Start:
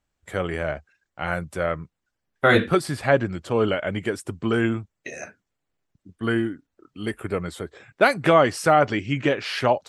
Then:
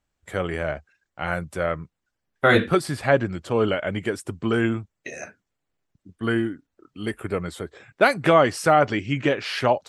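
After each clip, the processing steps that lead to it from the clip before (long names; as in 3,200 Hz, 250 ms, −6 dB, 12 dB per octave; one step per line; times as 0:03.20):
no processing that can be heard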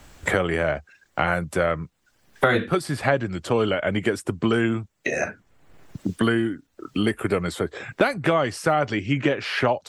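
multiband upward and downward compressor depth 100%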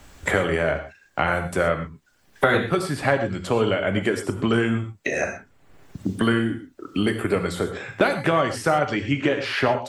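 reverb whose tail is shaped and stops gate 150 ms flat, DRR 6.5 dB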